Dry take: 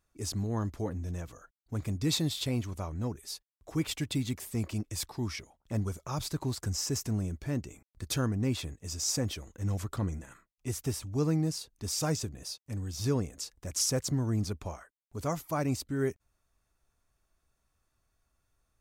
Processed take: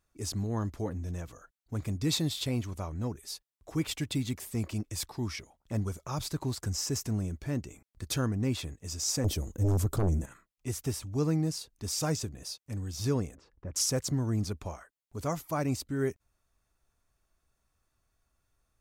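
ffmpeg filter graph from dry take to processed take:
ffmpeg -i in.wav -filter_complex "[0:a]asettb=1/sr,asplit=3[link_01][link_02][link_03];[link_01]atrim=end=9.244[link_04];[link_02]atrim=start=9.24:end=10.26,asetpts=PTS-STARTPTS,afade=type=in:duration=0.004:curve=qsin,afade=type=out:start_time=1.016:duration=0.004:curve=qsin,equalizer=frequency=2000:width=0.39:gain=-14,aeval=exprs='0.075*sin(PI/2*2.51*val(0)/0.075)':channel_layout=same[link_05];[link_03]atrim=start=10.256[link_06];[link_04][link_05]acrossfade=duration=0.004:curve1=hsin:curve2=qsin[link_07];[link_07][link_06]acrossfade=duration=0.004:curve1=qsin:curve2=hsin,asettb=1/sr,asplit=3[link_08][link_09][link_10];[link_08]atrim=end=13.354[link_11];[link_09]atrim=start=13.35:end=13.76,asetpts=PTS-STARTPTS,afade=type=in:duration=0.004:curve=qsin,afade=type=out:start_time=0.406:duration=0.004:curve=qsin,lowpass=1300,equalizer=frequency=690:width=4.7:gain=-5.5[link_12];[link_10]atrim=start=13.756[link_13];[link_11][link_12]acrossfade=duration=0.004:curve1=hsin:curve2=qsin[link_14];[link_14][link_13]acrossfade=duration=0.004:curve1=qsin:curve2=hsin" out.wav

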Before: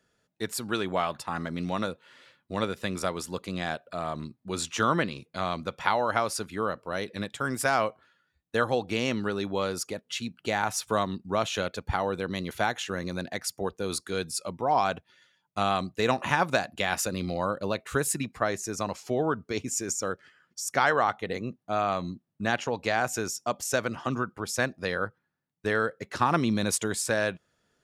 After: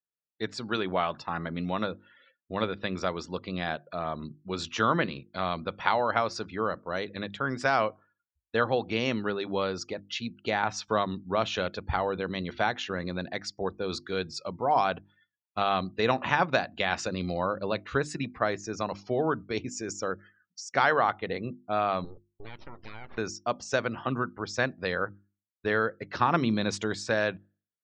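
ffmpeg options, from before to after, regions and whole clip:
ffmpeg -i in.wav -filter_complex "[0:a]asettb=1/sr,asplit=3[link_01][link_02][link_03];[link_01]atrim=end=22.044[link_04];[link_02]atrim=start=22.04:end=23.18,asetpts=PTS-STARTPTS,afade=type=in:duration=0.004:curve=qsin,afade=type=out:start_time=1.136:duration=0.004:curve=qsin,acompressor=threshold=-39dB:ratio=4:attack=3.2:release=140:knee=1:detection=peak,aeval=exprs='abs(val(0))':channel_layout=same[link_05];[link_03]atrim=start=23.176[link_06];[link_04][link_05]acrossfade=duration=0.004:curve1=hsin:curve2=qsin[link_07];[link_07][link_06]acrossfade=duration=0.004:curve1=qsin:curve2=hsin,lowpass=frequency=5500:width=0.5412,lowpass=frequency=5500:width=1.3066,afftdn=noise_reduction=34:noise_floor=-52,bandreject=frequency=50:width_type=h:width=6,bandreject=frequency=100:width_type=h:width=6,bandreject=frequency=150:width_type=h:width=6,bandreject=frequency=200:width_type=h:width=6,bandreject=frequency=250:width_type=h:width=6,bandreject=frequency=300:width_type=h:width=6,bandreject=frequency=350:width_type=h:width=6" out.wav

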